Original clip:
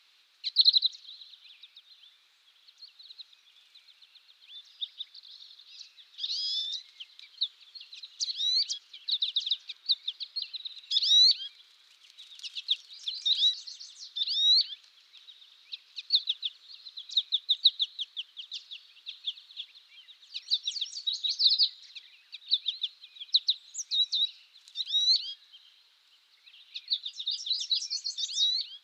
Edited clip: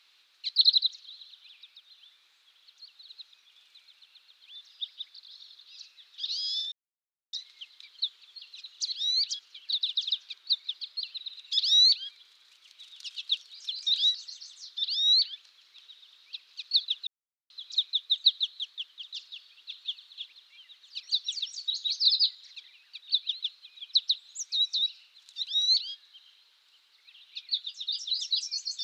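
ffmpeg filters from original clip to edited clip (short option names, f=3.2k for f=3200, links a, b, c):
-filter_complex "[0:a]asplit=4[a][b][c][d];[a]atrim=end=6.72,asetpts=PTS-STARTPTS,afade=t=out:st=6.716:d=0.004:c=hsin,apad=pad_dur=0.61[e];[b]atrim=start=6.72:end=16.46,asetpts=PTS-STARTPTS,afade=t=in:d=0.004:c=hsin,afade=t=out:st=9.736:d=0.004:c=hsin[f];[c]atrim=start=16.46:end=16.89,asetpts=PTS-STARTPTS,volume=0[g];[d]atrim=start=16.89,asetpts=PTS-STARTPTS,afade=t=in:d=0.004:c=hsin[h];[e][f][g][h]concat=n=4:v=0:a=1"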